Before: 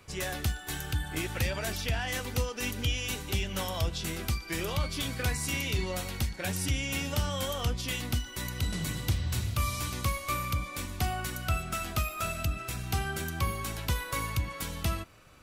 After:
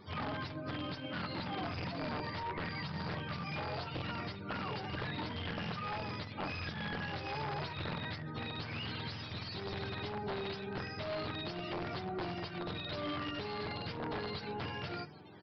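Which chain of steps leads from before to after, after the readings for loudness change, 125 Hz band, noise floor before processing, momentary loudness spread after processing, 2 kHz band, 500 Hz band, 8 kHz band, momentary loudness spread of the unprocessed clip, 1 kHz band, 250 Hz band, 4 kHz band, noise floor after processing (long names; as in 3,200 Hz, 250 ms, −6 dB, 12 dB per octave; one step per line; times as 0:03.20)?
−7.5 dB, −10.0 dB, −44 dBFS, 2 LU, −6.5 dB, −3.0 dB, below −30 dB, 3 LU, −3.5 dB, −3.5 dB, −7.0 dB, −45 dBFS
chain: frequency axis turned over on the octave scale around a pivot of 680 Hz
mains-hum notches 50/100/150 Hz
brickwall limiter −30 dBFS, peak gain reduction 11.5 dB
wrap-around overflow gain 31.5 dB
mid-hump overdrive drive 14 dB, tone 1,900 Hz, clips at −31.5 dBFS
tuned comb filter 150 Hz, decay 0.15 s, harmonics all, mix 50%
downsampling to 11,025 Hz
level +5 dB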